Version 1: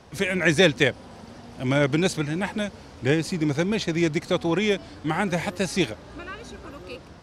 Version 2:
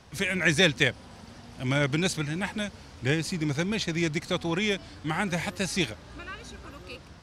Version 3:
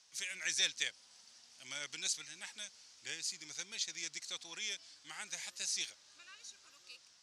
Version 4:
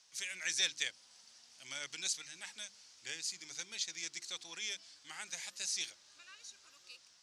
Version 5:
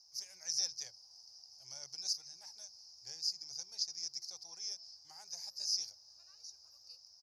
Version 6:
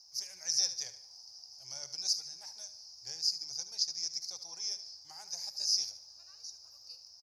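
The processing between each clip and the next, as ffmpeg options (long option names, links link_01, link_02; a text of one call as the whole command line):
ffmpeg -i in.wav -af "equalizer=frequency=450:width=0.5:gain=-7" out.wav
ffmpeg -i in.wav -af "bandpass=frequency=6300:width_type=q:width=1.8:csg=0" out.wav
ffmpeg -i in.wav -af "bandreject=frequency=50:width_type=h:width=6,bandreject=frequency=100:width_type=h:width=6,bandreject=frequency=150:width_type=h:width=6,bandreject=frequency=200:width_type=h:width=6,bandreject=frequency=250:width_type=h:width=6,bandreject=frequency=300:width_type=h:width=6,bandreject=frequency=350:width_type=h:width=6" out.wav
ffmpeg -i in.wav -af "firequalizer=gain_entry='entry(110,0);entry(220,-23);entry(380,-15);entry(770,-5);entry(1300,-20);entry(2000,-26);entry(3400,-30);entry(5000,7);entry(7900,-24);entry(12000,-2)':delay=0.05:min_phase=1,volume=3.5dB" out.wav
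ffmpeg -i in.wav -af "aecho=1:1:74|148|222|296:0.224|0.0918|0.0376|0.0154,volume=5dB" out.wav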